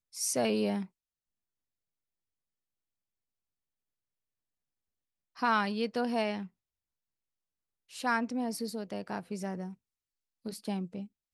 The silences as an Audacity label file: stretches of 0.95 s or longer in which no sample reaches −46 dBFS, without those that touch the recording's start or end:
0.860000	5.370000	silence
6.470000	7.910000	silence